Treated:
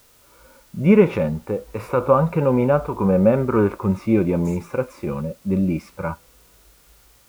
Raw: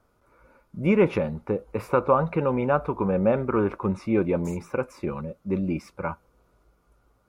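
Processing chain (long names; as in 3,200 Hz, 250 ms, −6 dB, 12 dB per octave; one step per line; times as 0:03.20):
bit-depth reduction 10 bits, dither triangular
harmonic and percussive parts rebalanced harmonic +9 dB
level −1 dB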